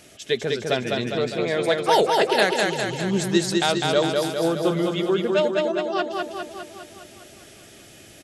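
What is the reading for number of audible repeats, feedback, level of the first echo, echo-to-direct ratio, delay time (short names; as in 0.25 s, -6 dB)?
8, 60%, -3.0 dB, -1.0 dB, 0.203 s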